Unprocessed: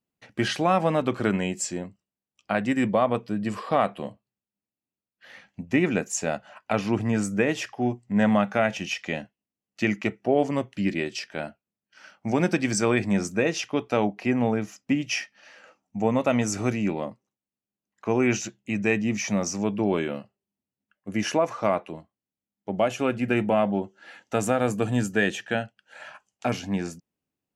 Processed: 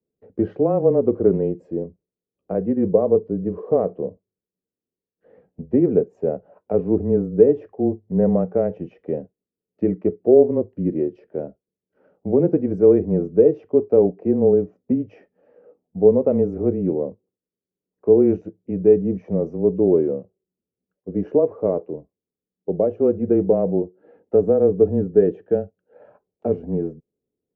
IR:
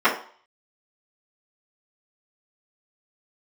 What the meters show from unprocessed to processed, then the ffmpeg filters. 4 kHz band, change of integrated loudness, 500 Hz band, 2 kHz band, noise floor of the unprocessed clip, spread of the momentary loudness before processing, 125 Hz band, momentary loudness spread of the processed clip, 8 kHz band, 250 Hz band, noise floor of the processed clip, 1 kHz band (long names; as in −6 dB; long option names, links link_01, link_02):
below −30 dB, +6.0 dB, +9.5 dB, below −20 dB, below −85 dBFS, 13 LU, +3.0 dB, 14 LU, below −40 dB, +4.0 dB, below −85 dBFS, −7.5 dB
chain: -af "lowpass=frequency=460:width_type=q:width=5.2,afreqshift=-18"